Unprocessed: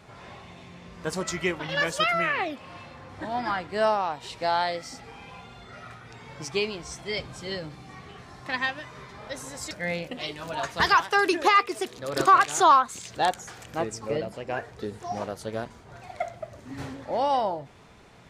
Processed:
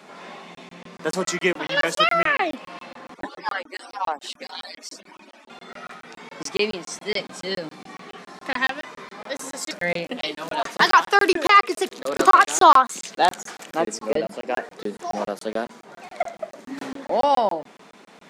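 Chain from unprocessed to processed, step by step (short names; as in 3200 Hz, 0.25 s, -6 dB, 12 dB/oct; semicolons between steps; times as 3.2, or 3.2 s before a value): 3.14–5.5 median-filter separation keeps percussive; steep high-pass 180 Hz 48 dB/oct; crackling interface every 0.14 s, samples 1024, zero, from 0.55; gain +6 dB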